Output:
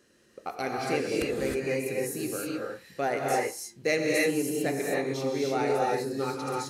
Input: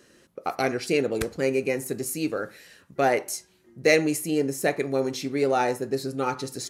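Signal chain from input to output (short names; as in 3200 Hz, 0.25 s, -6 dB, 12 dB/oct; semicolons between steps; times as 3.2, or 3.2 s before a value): non-linear reverb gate 0.34 s rising, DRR -3 dB; gain -7.5 dB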